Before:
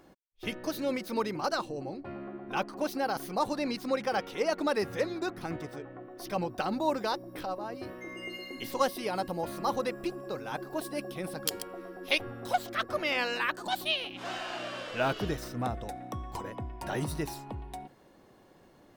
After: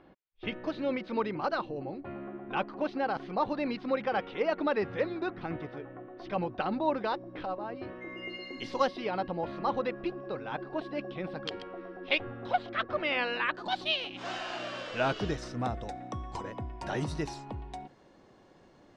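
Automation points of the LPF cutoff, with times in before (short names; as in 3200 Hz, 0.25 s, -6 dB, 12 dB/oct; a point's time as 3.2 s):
LPF 24 dB/oct
8.03 s 3500 Hz
8.64 s 5900 Hz
9.1 s 3600 Hz
13.46 s 3600 Hz
14.05 s 7200 Hz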